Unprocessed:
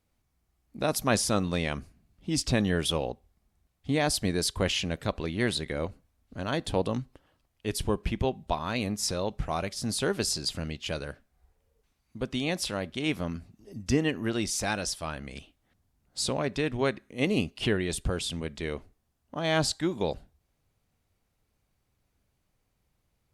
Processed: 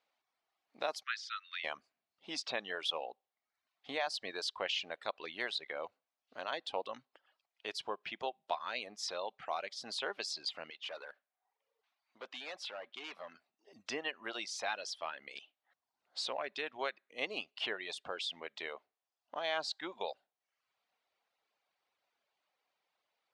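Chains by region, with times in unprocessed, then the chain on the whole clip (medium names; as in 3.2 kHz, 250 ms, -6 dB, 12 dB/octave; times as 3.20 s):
1.03–1.64 s: steep high-pass 1.3 kHz 72 dB/octave + distance through air 130 m
10.70–13.73 s: high-pass 780 Hz 6 dB/octave + tilt EQ -2 dB/octave + hard clipper -36 dBFS
whole clip: Chebyshev band-pass 690–4000 Hz, order 2; compression 1.5:1, threshold -45 dBFS; reverb removal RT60 0.73 s; trim +1.5 dB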